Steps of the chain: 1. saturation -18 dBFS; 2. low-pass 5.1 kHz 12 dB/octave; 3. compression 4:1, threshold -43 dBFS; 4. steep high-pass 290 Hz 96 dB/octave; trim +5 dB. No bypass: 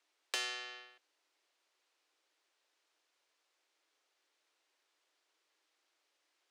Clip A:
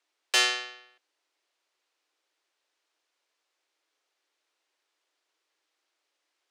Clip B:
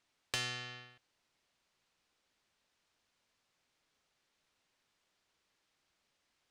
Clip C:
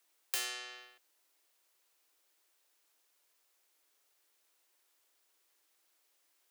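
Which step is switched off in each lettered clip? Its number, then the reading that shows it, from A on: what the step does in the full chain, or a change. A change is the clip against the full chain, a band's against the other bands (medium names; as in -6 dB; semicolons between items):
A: 3, mean gain reduction 7.5 dB; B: 4, 250 Hz band +6.0 dB; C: 2, 8 kHz band +7.0 dB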